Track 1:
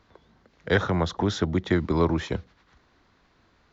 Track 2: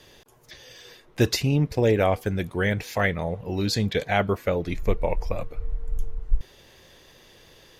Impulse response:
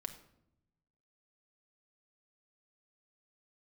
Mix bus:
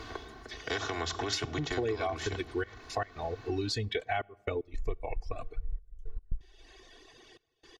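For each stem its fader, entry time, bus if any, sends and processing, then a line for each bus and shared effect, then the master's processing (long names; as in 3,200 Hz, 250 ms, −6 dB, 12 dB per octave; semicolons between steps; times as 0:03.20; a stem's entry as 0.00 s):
−3.5 dB, 0.00 s, send −6 dB, every bin compressed towards the loudest bin 2 to 1; automatic ducking −11 dB, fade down 0.45 s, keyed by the second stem
−2.0 dB, 0.00 s, send −18.5 dB, Bessel low-pass filter 6,500 Hz, order 8; reverb reduction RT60 1.8 s; gate pattern "xxxxxxxx..x." 114 BPM −24 dB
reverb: on, RT60 0.80 s, pre-delay 5 ms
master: comb filter 2.7 ms, depth 88%; downward compressor 5 to 1, threshold −30 dBFS, peak gain reduction 18.5 dB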